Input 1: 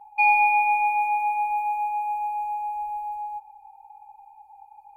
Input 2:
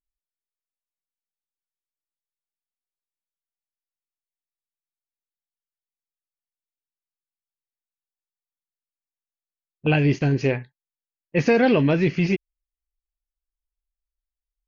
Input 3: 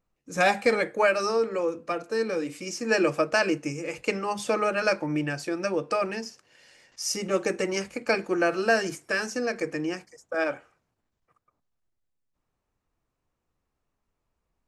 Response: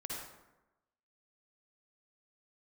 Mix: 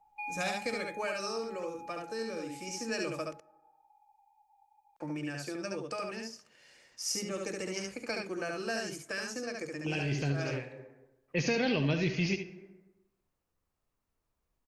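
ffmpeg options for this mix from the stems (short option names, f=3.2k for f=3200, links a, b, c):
-filter_complex "[0:a]volume=-18dB[a];[1:a]bass=f=250:g=-7,treble=f=4k:g=3,volume=-2dB,asplit=3[b][c][d];[c]volume=-10.5dB[e];[d]volume=-8dB[f];[2:a]volume=-6dB,asplit=3[g][h][i];[g]atrim=end=3.33,asetpts=PTS-STARTPTS,afade=t=out:st=3.326:d=0.004:c=hsin[j];[h]atrim=start=3.33:end=5,asetpts=PTS-STARTPTS,volume=0[k];[i]atrim=start=5,asetpts=PTS-STARTPTS,afade=t=in:d=0.004:c=hsin[l];[j][k][l]concat=n=3:v=0:a=1,asplit=4[m][n][o][p];[n]volume=-23.5dB[q];[o]volume=-3dB[r];[p]apad=whole_len=647027[s];[b][s]sidechaincompress=threshold=-44dB:ratio=4:attack=16:release=534[t];[3:a]atrim=start_sample=2205[u];[e][q]amix=inputs=2:normalize=0[v];[v][u]afir=irnorm=-1:irlink=0[w];[f][r]amix=inputs=2:normalize=0,aecho=0:1:71:1[x];[a][t][m][w][x]amix=inputs=5:normalize=0,acrossover=split=170|3000[y][z][aa];[z]acompressor=threshold=-41dB:ratio=2[ab];[y][ab][aa]amix=inputs=3:normalize=0"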